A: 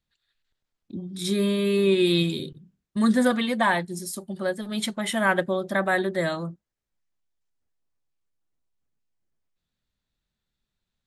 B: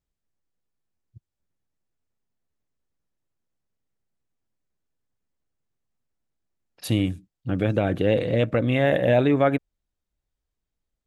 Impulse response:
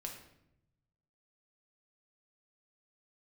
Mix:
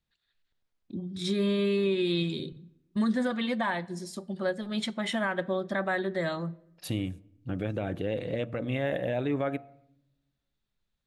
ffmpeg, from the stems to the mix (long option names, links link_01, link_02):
-filter_complex "[0:a]lowpass=5500,volume=-3dB,asplit=2[link_01][link_02];[link_02]volume=-14dB[link_03];[1:a]bandreject=frequency=116.1:width_type=h:width=4,bandreject=frequency=232.2:width_type=h:width=4,bandreject=frequency=348.3:width_type=h:width=4,bandreject=frequency=464.4:width_type=h:width=4,bandreject=frequency=580.5:width_type=h:width=4,bandreject=frequency=696.6:width_type=h:width=4,bandreject=frequency=812.7:width_type=h:width=4,bandreject=frequency=928.8:width_type=h:width=4,bandreject=frequency=1044.9:width_type=h:width=4,bandreject=frequency=1161:width_type=h:width=4,bandreject=frequency=1277.1:width_type=h:width=4,volume=-7dB,asplit=2[link_04][link_05];[link_05]volume=-17.5dB[link_06];[2:a]atrim=start_sample=2205[link_07];[link_03][link_06]amix=inputs=2:normalize=0[link_08];[link_08][link_07]afir=irnorm=-1:irlink=0[link_09];[link_01][link_04][link_09]amix=inputs=3:normalize=0,alimiter=limit=-19.5dB:level=0:latency=1:release=310"